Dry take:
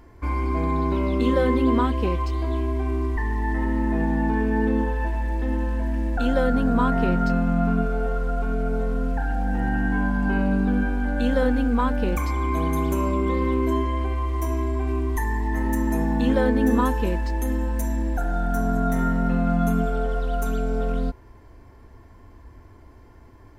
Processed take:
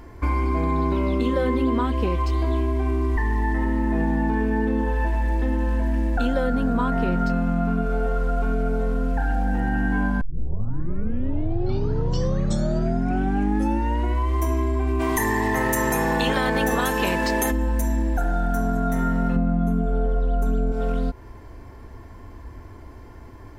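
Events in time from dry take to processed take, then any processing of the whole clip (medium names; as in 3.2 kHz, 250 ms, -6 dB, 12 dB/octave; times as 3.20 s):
10.21 s: tape start 4.15 s
14.99–17.50 s: spectral peaks clipped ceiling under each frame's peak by 22 dB
19.36–20.72 s: tilt shelf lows +7 dB, about 900 Hz
whole clip: compression, threshold -25 dBFS; trim +6.5 dB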